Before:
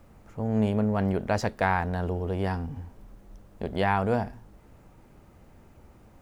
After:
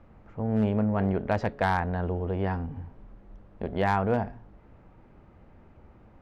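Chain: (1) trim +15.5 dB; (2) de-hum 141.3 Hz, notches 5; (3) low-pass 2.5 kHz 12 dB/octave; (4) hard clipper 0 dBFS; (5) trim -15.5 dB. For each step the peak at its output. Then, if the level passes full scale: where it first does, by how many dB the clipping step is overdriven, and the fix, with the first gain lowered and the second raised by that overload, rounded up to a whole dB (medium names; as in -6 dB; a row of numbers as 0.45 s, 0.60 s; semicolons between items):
+5.5 dBFS, +6.0 dBFS, +5.5 dBFS, 0.0 dBFS, -15.5 dBFS; step 1, 5.5 dB; step 1 +9.5 dB, step 5 -9.5 dB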